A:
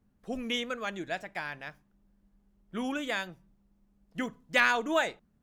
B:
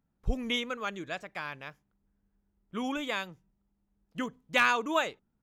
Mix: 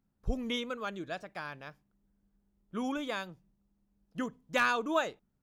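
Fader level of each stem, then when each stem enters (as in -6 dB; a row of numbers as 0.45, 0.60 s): -11.5, -3.5 dB; 0.00, 0.00 s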